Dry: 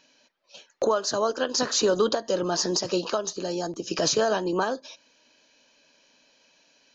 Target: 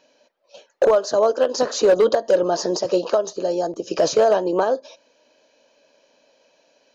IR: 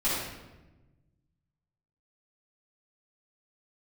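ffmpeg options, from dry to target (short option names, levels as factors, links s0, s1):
-af "equalizer=f=560:w=1:g=14,asoftclip=type=hard:threshold=0.473,volume=0.708"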